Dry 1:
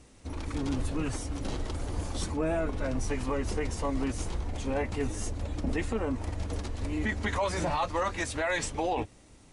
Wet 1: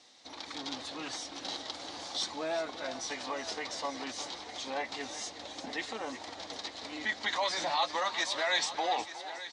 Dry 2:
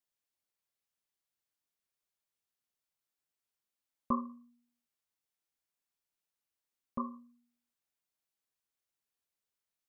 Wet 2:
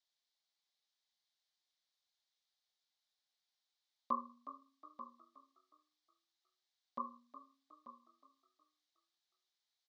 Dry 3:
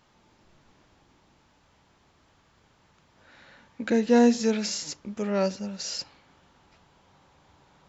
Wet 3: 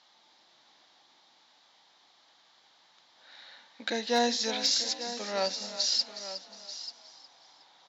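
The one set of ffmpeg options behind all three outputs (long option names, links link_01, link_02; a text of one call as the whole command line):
ffmpeg -i in.wav -filter_complex "[0:a]highpass=350,equalizer=frequency=420:width_type=q:width=4:gain=-5,equalizer=frequency=760:width_type=q:width=4:gain=6,equalizer=frequency=1400:width_type=q:width=4:gain=-3,equalizer=frequency=2600:width_type=q:width=4:gain=-7,equalizer=frequency=3800:width_type=q:width=4:gain=5,lowpass=frequency=4900:width=0.5412,lowpass=frequency=4900:width=1.3066,asplit=2[link_01][link_02];[link_02]aecho=0:1:888:0.211[link_03];[link_01][link_03]amix=inputs=2:normalize=0,crystalizer=i=8.5:c=0,asplit=2[link_04][link_05];[link_05]asplit=4[link_06][link_07][link_08][link_09];[link_06]adelay=364,afreqshift=32,volume=-13.5dB[link_10];[link_07]adelay=728,afreqshift=64,volume=-21.7dB[link_11];[link_08]adelay=1092,afreqshift=96,volume=-29.9dB[link_12];[link_09]adelay=1456,afreqshift=128,volume=-38dB[link_13];[link_10][link_11][link_12][link_13]amix=inputs=4:normalize=0[link_14];[link_04][link_14]amix=inputs=2:normalize=0,asoftclip=type=hard:threshold=-9.5dB,volume=-6.5dB" out.wav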